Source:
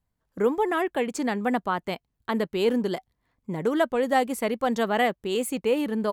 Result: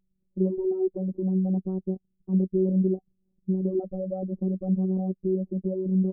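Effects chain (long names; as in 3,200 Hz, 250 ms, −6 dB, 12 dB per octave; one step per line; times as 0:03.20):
inverse Chebyshev low-pass filter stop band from 2,100 Hz, stop band 80 dB
0:03.79–0:04.23: comb filter 1.6 ms, depth 63%
phases set to zero 188 Hz
level +7.5 dB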